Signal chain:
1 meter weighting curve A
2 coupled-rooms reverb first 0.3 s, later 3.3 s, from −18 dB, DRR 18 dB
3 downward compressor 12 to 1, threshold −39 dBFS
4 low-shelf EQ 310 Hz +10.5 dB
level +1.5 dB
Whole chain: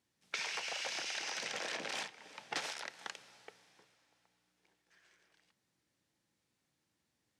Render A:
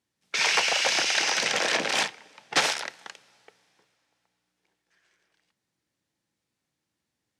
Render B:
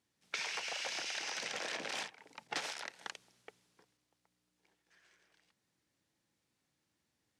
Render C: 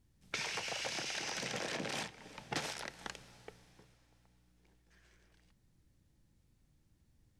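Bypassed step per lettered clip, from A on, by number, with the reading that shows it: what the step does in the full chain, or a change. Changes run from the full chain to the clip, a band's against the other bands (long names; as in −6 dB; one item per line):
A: 3, change in crest factor −3.0 dB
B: 2, change in momentary loudness spread −5 LU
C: 1, 125 Hz band +14.0 dB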